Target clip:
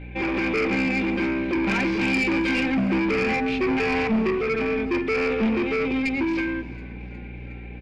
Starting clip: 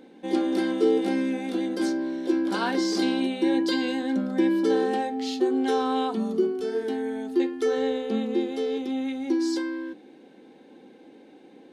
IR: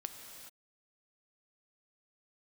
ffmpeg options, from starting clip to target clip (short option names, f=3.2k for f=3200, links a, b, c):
-filter_complex "[0:a]bandreject=f=60:t=h:w=6,bandreject=f=120:t=h:w=6,bandreject=f=180:t=h:w=6,bandreject=f=240:t=h:w=6,bandreject=f=300:t=h:w=6,bandreject=f=360:t=h:w=6,aecho=1:1:5.1:0.37,adynamicequalizer=threshold=0.0178:dfrequency=460:dqfactor=3.9:tfrequency=460:tqfactor=3.9:attack=5:release=100:ratio=0.375:range=2.5:mode=boostabove:tftype=bell,acrossover=split=170[a][b];[a]dynaudnorm=f=100:g=17:m=13.5dB[c];[b]volume=28dB,asoftclip=hard,volume=-28dB[d];[c][d]amix=inputs=2:normalize=0,aeval=exprs='val(0)+0.01*(sin(2*PI*60*n/s)+sin(2*PI*2*60*n/s)/2+sin(2*PI*3*60*n/s)/3+sin(2*PI*4*60*n/s)/4+sin(2*PI*5*60*n/s)/5)':c=same,lowpass=f=2.4k:t=q:w=15,atempo=1.5,asoftclip=type=tanh:threshold=-21.5dB,asplit=6[e][f][g][h][i][j];[f]adelay=362,afreqshift=-69,volume=-22.5dB[k];[g]adelay=724,afreqshift=-138,volume=-26.4dB[l];[h]adelay=1086,afreqshift=-207,volume=-30.3dB[m];[i]adelay=1448,afreqshift=-276,volume=-34.1dB[n];[j]adelay=1810,afreqshift=-345,volume=-38dB[o];[e][k][l][m][n][o]amix=inputs=6:normalize=0,asplit=2[p][q];[1:a]atrim=start_sample=2205[r];[q][r]afir=irnorm=-1:irlink=0,volume=-9dB[s];[p][s]amix=inputs=2:normalize=0,volume=2dB"